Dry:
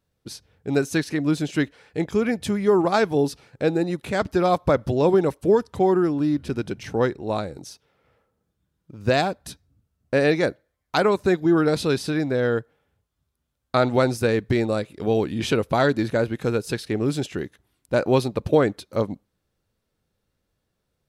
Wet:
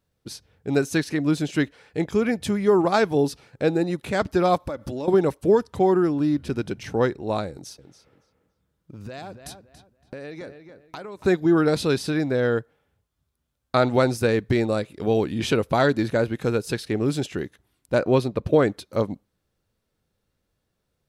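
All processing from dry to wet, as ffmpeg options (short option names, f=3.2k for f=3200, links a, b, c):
-filter_complex "[0:a]asettb=1/sr,asplit=3[a][b][c];[a]atrim=end=4.604[d];[b]atrim=start=4.6:end=5.08,asetpts=PTS-STARTPTS,afade=t=in:d=0.004:c=qsin,afade=t=out:st=0.476:d=0.004:c=qsin,highshelf=f=5.3k:g=6,aecho=1:1:3.5:0.38,atrim=end_sample=21168,acompressor=threshold=-27dB:ratio=6:attack=3.2:release=140:knee=1:detection=peak[e];[c]atrim=start=5.076[f];[d][e]acrossfade=d=0.004:c1=hsin:c2=qsin[g];[g][f]acrossfade=d=0.004:c1=qsin:c2=hsin,asettb=1/sr,asplit=3[h][i][j];[h]atrim=end=7.504[k];[i]atrim=start=7.5:end=11.25,asetpts=PTS-STARTPTS,afade=t=in:d=0.004:c=qsin,afade=t=out:st=3.746:d=0.004:c=qsin,acompressor=threshold=-33dB:ratio=10:attack=3.2:release=140:knee=1:detection=peak,asplit=2[l][m];[m]adelay=282,lowpass=f=3.3k:p=1,volume=-9dB,asplit=2[n][o];[o]adelay=282,lowpass=f=3.3k:p=1,volume=0.28,asplit=2[p][q];[q]adelay=282,lowpass=f=3.3k:p=1,volume=0.28[r];[l][n][p][r]amix=inputs=4:normalize=0,atrim=end_sample=165375[s];[j]atrim=start=11.246[t];[k][s]acrossfade=d=0.004:c1=hsin:c2=qsin[u];[u][t]acrossfade=d=0.004:c1=qsin:c2=hsin,asettb=1/sr,asplit=3[v][w][x];[v]atrim=end=17.984[y];[w]atrim=start=17.98:end=18.59,asetpts=PTS-STARTPTS,afade=t=in:d=0.004:c=qsin,afade=t=out:st=0.606:d=0.004:c=qsin,highshelf=f=3.6k:g=-7,bandreject=f=830:w=7.5[z];[x]atrim=start=18.586[aa];[y][z]acrossfade=d=0.004:c1=hsin:c2=qsin[ab];[ab][aa]acrossfade=d=0.004:c1=qsin:c2=hsin"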